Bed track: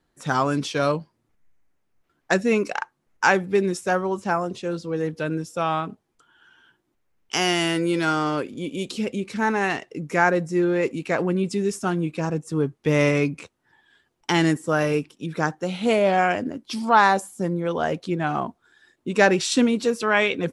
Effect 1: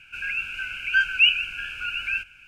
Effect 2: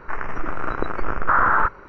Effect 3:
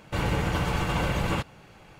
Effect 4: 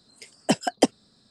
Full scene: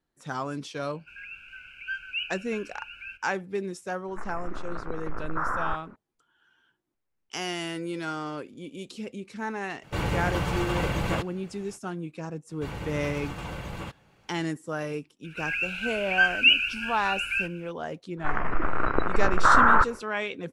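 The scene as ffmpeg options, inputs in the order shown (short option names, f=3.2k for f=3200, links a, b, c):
-filter_complex "[1:a]asplit=2[a][b];[2:a]asplit=2[c][d];[3:a]asplit=2[e][f];[0:a]volume=-10.5dB[g];[a]highshelf=f=4.4k:g=-8[h];[c]lowpass=f=1.7k:p=1[i];[d]aresample=11025,aresample=44100[j];[h]atrim=end=2.47,asetpts=PTS-STARTPTS,volume=-12.5dB,afade=t=in:d=0.004:c=hsin,afade=t=out:st=2.466:d=0.004:c=hsin,adelay=940[k];[i]atrim=end=1.88,asetpts=PTS-STARTPTS,volume=-10dB,afade=t=in:d=0.004:c=hsin,afade=t=out:st=1.876:d=0.004:c=hsin,adelay=4080[l];[e]atrim=end=1.99,asetpts=PTS-STARTPTS,volume=-1.5dB,afade=t=in:d=0.05,afade=t=out:st=1.94:d=0.05,adelay=9800[m];[f]atrim=end=1.99,asetpts=PTS-STARTPTS,volume=-10dB,afade=t=in:d=0.004:c=hsin,afade=t=out:st=1.986:d=0.004:c=hsin,adelay=12490[n];[b]atrim=end=2.47,asetpts=PTS-STARTPTS,volume=-1dB,afade=t=in:d=0.004:c=hsin,afade=t=out:st=2.466:d=0.004:c=hsin,adelay=672084S[o];[j]atrim=end=1.88,asetpts=PTS-STARTPTS,afade=t=in:d=0.1,afade=t=out:st=1.78:d=0.1,adelay=18160[p];[g][k][l][m][n][o][p]amix=inputs=7:normalize=0"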